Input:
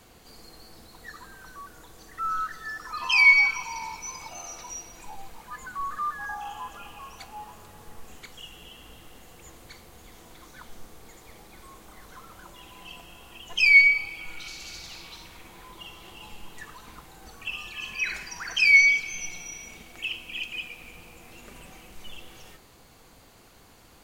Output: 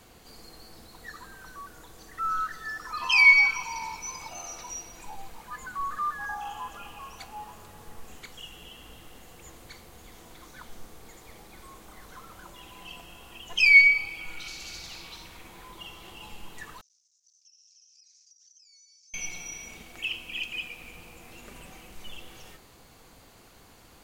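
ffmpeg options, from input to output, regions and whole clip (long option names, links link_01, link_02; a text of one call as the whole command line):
ffmpeg -i in.wav -filter_complex "[0:a]asettb=1/sr,asplit=3[link_01][link_02][link_03];[link_01]atrim=end=16.814[link_04];[link_02]atrim=start=16.81:end=19.14,asetpts=PTS-STARTPTS,afade=type=in:duration=0.004:curve=qsin,afade=type=out:start_time=2.326:duration=0.004:curve=qsin,aeval=exprs='max(val(0),0)':channel_layout=same,asuperpass=centerf=5900:order=4:qfactor=4.7,acompressor=threshold=-54dB:ratio=16:attack=3.2:release=140:knee=1:detection=peak[link_05];[link_03]atrim=start=19.136[link_06];[link_04][link_05]acrossfade=duration=0.004:curve1=hsin:curve2=qsin[link_07];[link_07][link_06]acrossfade=duration=0.004:curve1=qsin:curve2=hsin" out.wav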